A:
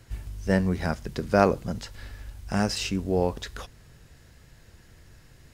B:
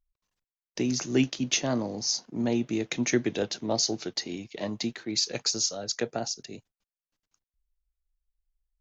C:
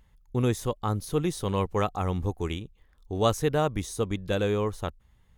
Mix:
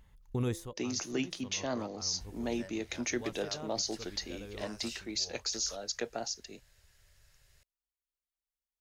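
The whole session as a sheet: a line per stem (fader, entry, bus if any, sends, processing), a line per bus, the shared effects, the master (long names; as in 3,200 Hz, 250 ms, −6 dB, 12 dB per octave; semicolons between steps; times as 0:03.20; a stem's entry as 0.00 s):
−5.5 dB, 2.10 s, no send, downward compressor 2.5 to 1, threshold −34 dBFS, peak gain reduction 14 dB; guitar amp tone stack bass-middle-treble 10-0-10; hollow resonant body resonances 400/570 Hz, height 12 dB
−4.0 dB, 0.00 s, no send, high-pass filter 360 Hz 6 dB per octave
−0.5 dB, 0.00 s, no send, hum removal 169.3 Hz, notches 3; automatic ducking −20 dB, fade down 0.30 s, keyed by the second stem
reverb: not used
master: brickwall limiter −22.5 dBFS, peak gain reduction 8.5 dB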